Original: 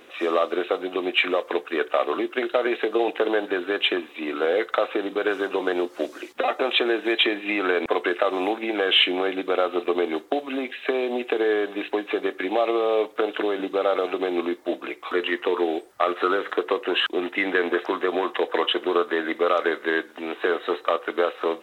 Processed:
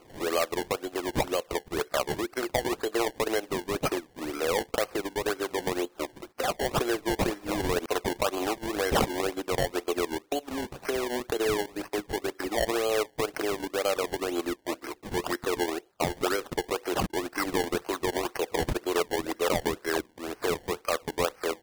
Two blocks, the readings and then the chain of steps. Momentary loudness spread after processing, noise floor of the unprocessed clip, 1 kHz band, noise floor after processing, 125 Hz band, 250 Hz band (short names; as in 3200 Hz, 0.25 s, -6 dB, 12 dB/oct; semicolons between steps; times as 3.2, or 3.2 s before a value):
5 LU, -46 dBFS, -4.5 dB, -59 dBFS, n/a, -5.0 dB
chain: decimation with a swept rate 24×, swing 100% 2 Hz; transient shaper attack -2 dB, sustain -8 dB; gain -4.5 dB